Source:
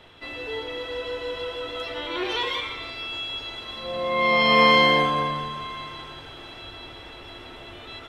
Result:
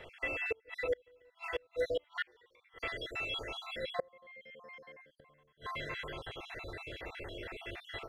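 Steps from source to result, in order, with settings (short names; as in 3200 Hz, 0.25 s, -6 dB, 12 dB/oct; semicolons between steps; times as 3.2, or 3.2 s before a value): random spectral dropouts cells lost 50%; flipped gate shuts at -25 dBFS, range -35 dB; ten-band EQ 250 Hz -8 dB, 500 Hz +7 dB, 1000 Hz -7 dB, 2000 Hz +9 dB, 4000 Hz -11 dB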